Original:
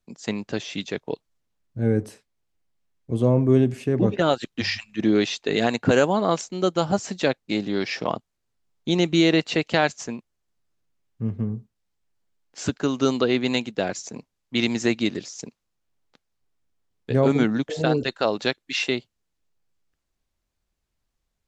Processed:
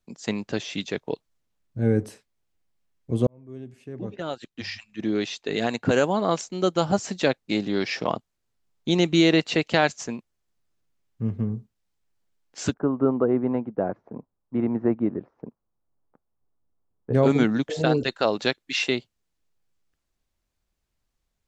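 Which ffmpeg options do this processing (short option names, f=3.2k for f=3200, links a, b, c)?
-filter_complex "[0:a]asplit=3[a][b][c];[a]afade=t=out:st=12.72:d=0.02[d];[b]lowpass=f=1.2k:w=0.5412,lowpass=f=1.2k:w=1.3066,afade=t=in:st=12.72:d=0.02,afade=t=out:st=17.13:d=0.02[e];[c]afade=t=in:st=17.13:d=0.02[f];[d][e][f]amix=inputs=3:normalize=0,asplit=2[g][h];[g]atrim=end=3.27,asetpts=PTS-STARTPTS,afade=t=out:st=3.266:d=0.004:c=hsin[i];[h]atrim=start=3.27,asetpts=PTS-STARTPTS,afade=t=in:d=3.63[j];[i][j]concat=n=2:v=0:a=1"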